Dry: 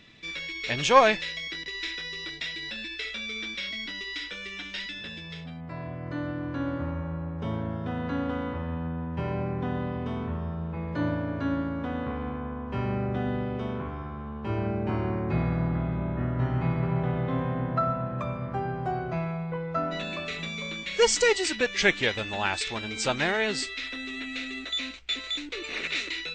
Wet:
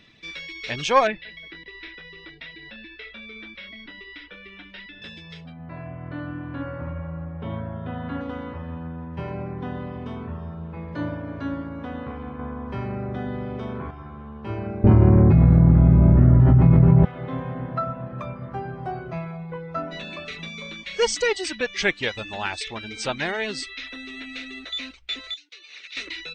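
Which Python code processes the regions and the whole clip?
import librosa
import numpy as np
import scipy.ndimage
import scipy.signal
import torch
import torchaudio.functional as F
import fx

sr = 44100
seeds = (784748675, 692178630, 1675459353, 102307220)

y = fx.chain(x, sr, fx.clip_hard(threshold_db=-15.0),
    fx.air_absorb(metres=360.0),
    fx.echo_feedback(ms=179, feedback_pct=23, wet_db=-17), at=(1.07, 5.02))
y = fx.chain(y, sr, fx.lowpass(hz=3600.0, slope=24),
    fx.echo_single(ms=74, db=-6.5), at=(5.52, 8.21))
y = fx.chain(y, sr, fx.notch(hz=2800.0, q=7.3),
    fx.env_flatten(amount_pct=50), at=(12.39, 13.91))
y = fx.chain(y, sr, fx.tilt_eq(slope=-4.0),
    fx.env_flatten(amount_pct=100), at=(14.84, 17.05))
y = fx.chain(y, sr, fx.lowpass(hz=6400.0, slope=24),
    fx.differentiator(), at=(25.34, 25.97))
y = fx.notch(y, sr, hz=7200.0, q=6.3)
y = fx.dereverb_blind(y, sr, rt60_s=0.51)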